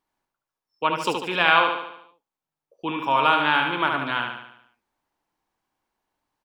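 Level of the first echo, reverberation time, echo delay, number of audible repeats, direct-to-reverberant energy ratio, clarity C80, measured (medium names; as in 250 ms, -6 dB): -5.0 dB, no reverb, 73 ms, 6, no reverb, no reverb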